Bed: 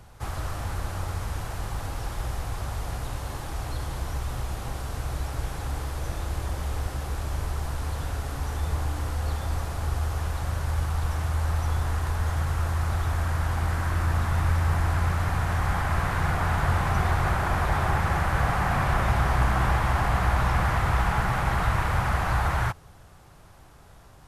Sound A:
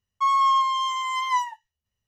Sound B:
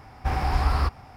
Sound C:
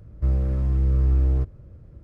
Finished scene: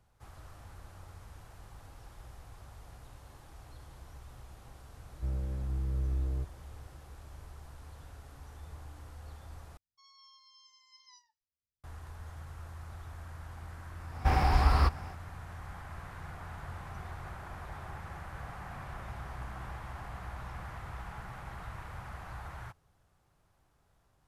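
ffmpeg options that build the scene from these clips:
-filter_complex "[0:a]volume=0.106[s0];[1:a]firequalizer=gain_entry='entry(430,0);entry(670,-12);entry(1100,-29);entry(1700,-17);entry(2600,-24);entry(4900,10);entry(7600,-21)':delay=0.05:min_phase=1[s1];[2:a]dynaudnorm=f=100:g=3:m=3.98[s2];[s0]asplit=2[s3][s4];[s3]atrim=end=9.774[s5];[s1]atrim=end=2.07,asetpts=PTS-STARTPTS,volume=0.133[s6];[s4]atrim=start=11.836[s7];[3:a]atrim=end=2.03,asetpts=PTS-STARTPTS,volume=0.237,afade=t=in:d=0.004:c=hsin,afade=t=out:st=2.026:d=0.004:c=hsin,adelay=5000[s8];[s2]atrim=end=1.16,asetpts=PTS-STARTPTS,volume=0.282,afade=t=in:d=0.004:c=hsin,afade=t=out:st=1.156:d=0.004:c=hsin,adelay=14000[s9];[s5][s6]acrossfade=d=0.004:c1=hsin:c2=hsin[s10];[s10][s7]acrossfade=d=0.004:c1=hsin:c2=hsin[s11];[s11][s8][s9]amix=inputs=3:normalize=0"

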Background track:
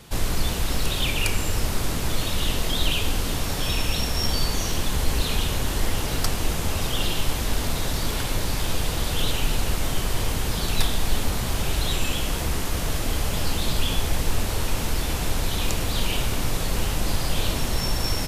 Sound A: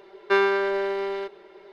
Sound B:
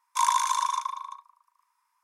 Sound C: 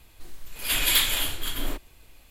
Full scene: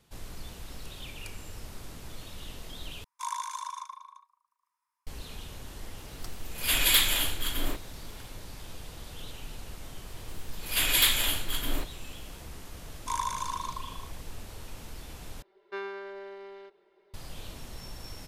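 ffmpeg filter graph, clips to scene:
-filter_complex "[2:a]asplit=2[s0][s1];[3:a]asplit=2[s2][s3];[0:a]volume=0.119[s4];[s0]highshelf=f=9900:g=3[s5];[s4]asplit=3[s6][s7][s8];[s6]atrim=end=3.044[s9];[s5]atrim=end=2.03,asetpts=PTS-STARTPTS,volume=0.266[s10];[s7]atrim=start=5.066:end=15.424[s11];[1:a]atrim=end=1.72,asetpts=PTS-STARTPTS,volume=0.141[s12];[s8]atrim=start=17.136[s13];[s2]atrim=end=2.3,asetpts=PTS-STARTPTS,volume=0.891,afade=t=in:d=0.004:c=hsin,afade=t=out:st=2.296:d=0.004:c=hsin,adelay=5990[s14];[s3]atrim=end=2.3,asetpts=PTS-STARTPTS,volume=0.841,afade=t=in:d=0.004:c=hsin,afade=t=out:st=2.296:d=0.004:c=hsin,adelay=10070[s15];[s1]atrim=end=2.03,asetpts=PTS-STARTPTS,volume=0.376,afade=t=in:d=0.004:c=hsin,afade=t=out:st=2.026:d=0.004:c=hsin,adelay=12910[s16];[s9][s10]acrossfade=d=0.004:c1=hsin:c2=hsin[s17];[s17][s11]acrossfade=d=0.004:c1=hsin:c2=hsin[s18];[s18][s12]acrossfade=d=0.004:c1=hsin:c2=hsin[s19];[s19][s13]acrossfade=d=0.004:c1=hsin:c2=hsin[s20];[s20][s14][s15][s16]amix=inputs=4:normalize=0"

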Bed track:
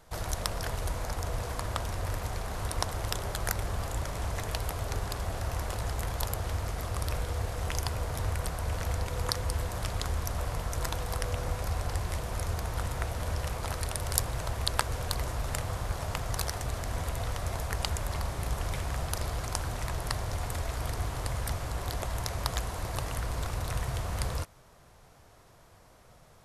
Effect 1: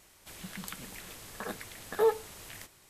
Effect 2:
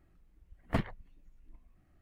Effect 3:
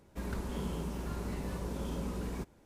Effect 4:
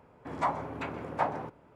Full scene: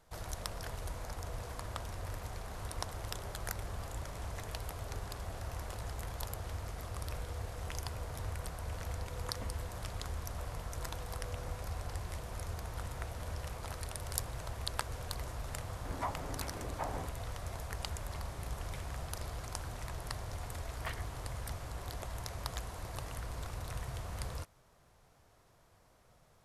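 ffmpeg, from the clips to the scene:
-filter_complex "[2:a]asplit=2[s0][s1];[0:a]volume=0.376[s2];[4:a]tremolo=f=2.9:d=0.52[s3];[s1]highpass=1200[s4];[s0]atrim=end=2.01,asetpts=PTS-STARTPTS,volume=0.133,afade=t=in:d=0.004:c=hsin,afade=t=out:st=2.006:d=0.004:c=hsin,adelay=8670[s5];[s3]atrim=end=1.75,asetpts=PTS-STARTPTS,volume=0.562,afade=t=in:d=0.004:c=hsin,afade=t=out:st=1.746:d=0.004:c=hsin,adelay=15600[s6];[s4]atrim=end=2.01,asetpts=PTS-STARTPTS,volume=0.841,afade=t=in:d=0.004:c=hsin,afade=t=out:st=2.006:d=0.004:c=hsin,adelay=20120[s7];[s2][s5][s6][s7]amix=inputs=4:normalize=0"

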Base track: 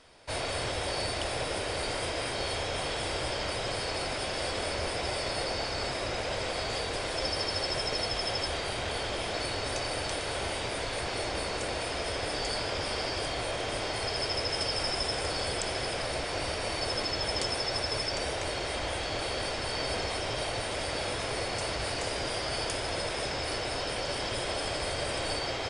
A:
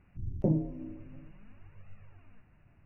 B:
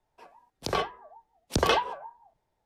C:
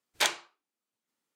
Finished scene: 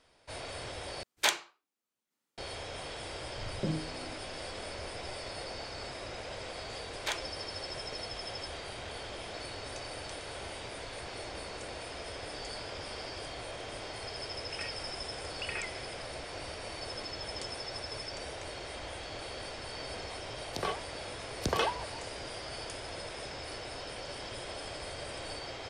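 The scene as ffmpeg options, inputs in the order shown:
-filter_complex "[3:a]asplit=2[s0][s1];[2:a]asplit=2[s2][s3];[0:a]volume=0.355[s4];[s1]highshelf=f=8000:g=-8[s5];[s2]lowpass=f=2600:t=q:w=0.5098,lowpass=f=2600:t=q:w=0.6013,lowpass=f=2600:t=q:w=0.9,lowpass=f=2600:t=q:w=2.563,afreqshift=-3000[s6];[s4]asplit=2[s7][s8];[s7]atrim=end=1.034[s9];[s0]atrim=end=1.35,asetpts=PTS-STARTPTS,volume=0.891[s10];[s8]atrim=start=2.376[s11];[1:a]atrim=end=2.85,asetpts=PTS-STARTPTS,volume=0.473,afade=t=in:d=0.004:c=hsin,afade=t=out:st=2.846:d=0.004:c=hsin,adelay=3190[s12];[s5]atrim=end=1.35,asetpts=PTS-STARTPTS,volume=0.422,afade=t=in:d=0.004:c=hsin,afade=t=out:st=1.346:d=0.004:c=hsin,adelay=6860[s13];[s6]atrim=end=2.65,asetpts=PTS-STARTPTS,volume=0.168,afade=t=in:d=0.004:c=hsin,afade=t=out:st=2.646:d=0.004:c=hsin,adelay=13860[s14];[s3]atrim=end=2.65,asetpts=PTS-STARTPTS,volume=0.473,afade=t=in:d=0.004:c=hsin,afade=t=out:st=2.646:d=0.004:c=hsin,adelay=19900[s15];[s9][s10]acrossfade=d=0.004:c1=hsin:c2=hsin[s16];[s16][s11]acrossfade=d=0.004:c1=hsin:c2=hsin[s17];[s17][s12][s13][s14][s15]amix=inputs=5:normalize=0"

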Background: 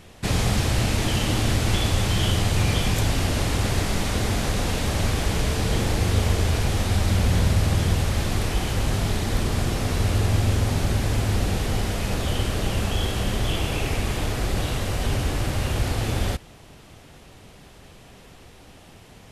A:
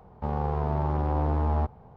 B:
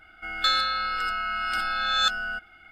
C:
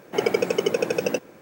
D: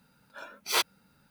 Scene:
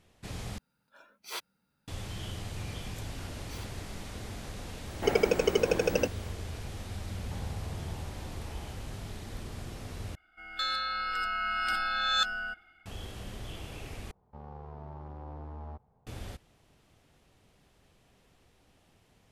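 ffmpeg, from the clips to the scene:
-filter_complex "[4:a]asplit=2[s0][s1];[1:a]asplit=2[s2][s3];[0:a]volume=0.133[s4];[s1]acompressor=threshold=0.0178:ratio=6:attack=3.2:release=140:knee=1:detection=peak[s5];[s2]acompressor=threshold=0.0355:ratio=6:attack=3.2:release=140:knee=1:detection=peak[s6];[2:a]dynaudnorm=f=220:g=5:m=4.47[s7];[s4]asplit=4[s8][s9][s10][s11];[s8]atrim=end=0.584[s12];[s0]atrim=end=1.3,asetpts=PTS-STARTPTS,volume=0.224[s13];[s9]atrim=start=1.876:end=10.154[s14];[s7]atrim=end=2.71,asetpts=PTS-STARTPTS,volume=0.2[s15];[s10]atrim=start=12.856:end=14.114[s16];[s3]atrim=end=1.96,asetpts=PTS-STARTPTS,volume=0.133[s17];[s11]atrim=start=16.066[s18];[s5]atrim=end=1.3,asetpts=PTS-STARTPTS,volume=0.266,afade=t=in:d=0.004:c=hsin,afade=t=out:st=1.296:d=0.004:c=hsin,adelay=2830[s19];[3:a]atrim=end=1.41,asetpts=PTS-STARTPTS,volume=0.668,afade=t=in:d=0.004:c=hsin,afade=t=out:st=1.406:d=0.004:c=hsin,adelay=215649S[s20];[s6]atrim=end=1.96,asetpts=PTS-STARTPTS,volume=0.237,afade=t=in:d=0.004:c=hsin,afade=t=out:st=1.956:d=0.004:c=hsin,adelay=7090[s21];[s12][s13]acrossfade=d=0.004:c1=hsin:c2=hsin[s22];[s22][s14]acrossfade=d=0.004:c1=hsin:c2=hsin[s23];[s23][s15]acrossfade=d=0.004:c1=hsin:c2=hsin[s24];[s24][s16]acrossfade=d=0.004:c1=hsin:c2=hsin[s25];[s25][s17]acrossfade=d=0.004:c1=hsin:c2=hsin[s26];[s26][s18]acrossfade=d=0.004:c1=hsin:c2=hsin[s27];[s27][s19][s20][s21]amix=inputs=4:normalize=0"

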